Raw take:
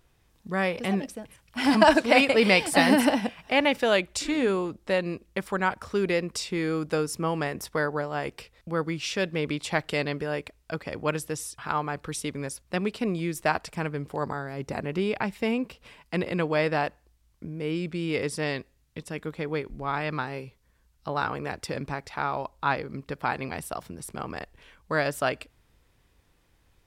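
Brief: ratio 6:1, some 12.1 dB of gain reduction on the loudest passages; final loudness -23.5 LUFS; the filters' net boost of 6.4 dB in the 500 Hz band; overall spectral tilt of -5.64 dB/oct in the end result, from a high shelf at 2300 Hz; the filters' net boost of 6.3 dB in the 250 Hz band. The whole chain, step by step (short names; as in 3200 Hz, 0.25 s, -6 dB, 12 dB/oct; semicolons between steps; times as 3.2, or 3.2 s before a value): bell 250 Hz +6 dB; bell 500 Hz +6.5 dB; high shelf 2300 Hz -5 dB; compressor 6:1, threshold -23 dBFS; gain +6 dB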